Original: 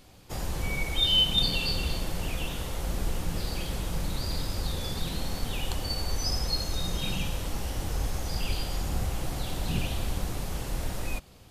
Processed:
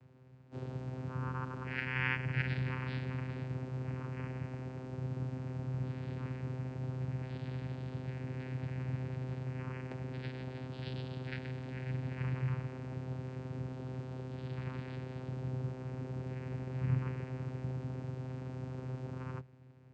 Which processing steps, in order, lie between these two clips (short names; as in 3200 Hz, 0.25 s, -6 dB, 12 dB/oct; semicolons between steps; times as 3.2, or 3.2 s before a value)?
tone controls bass +1 dB, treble -10 dB; speed mistake 78 rpm record played at 45 rpm; vocoder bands 8, saw 129 Hz; gain -1.5 dB